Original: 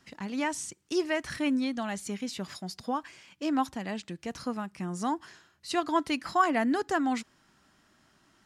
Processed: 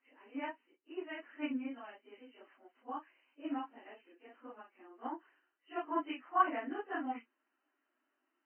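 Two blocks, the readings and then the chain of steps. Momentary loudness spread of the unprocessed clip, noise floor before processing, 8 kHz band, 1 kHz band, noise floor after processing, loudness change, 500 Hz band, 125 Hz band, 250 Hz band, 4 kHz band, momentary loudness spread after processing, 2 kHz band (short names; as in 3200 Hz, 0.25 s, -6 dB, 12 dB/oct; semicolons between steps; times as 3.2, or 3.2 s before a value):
10 LU, -67 dBFS, under -40 dB, -7.0 dB, -84 dBFS, -8.5 dB, -11.5 dB, under -30 dB, -12.5 dB, -16.5 dB, 22 LU, -10.5 dB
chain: phase scrambler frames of 0.1 s; brick-wall FIR band-pass 240–3100 Hz; upward expander 1.5:1, over -40 dBFS; gain -5.5 dB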